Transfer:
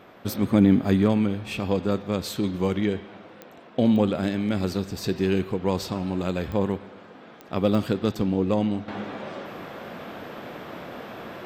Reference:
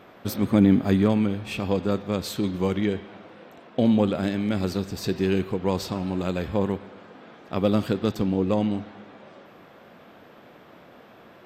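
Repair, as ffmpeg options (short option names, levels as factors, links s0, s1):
-af "adeclick=t=4,asetnsamples=n=441:p=0,asendcmd='8.88 volume volume -11.5dB',volume=1"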